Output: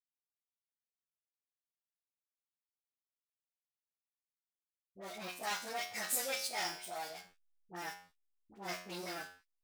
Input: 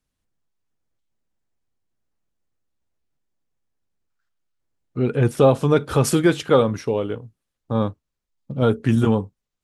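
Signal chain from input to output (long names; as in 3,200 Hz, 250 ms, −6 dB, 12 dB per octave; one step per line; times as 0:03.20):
phase-vocoder pitch shift without resampling +7.5 semitones
low-pass filter 8,500 Hz 12 dB per octave
leveller curve on the samples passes 3
first difference
tuned comb filter 90 Hz, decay 0.63 s, harmonics all, mix 80%
slack as between gear wheels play −55.5 dBFS
all-pass dispersion highs, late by 61 ms, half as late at 990 Hz
level +1 dB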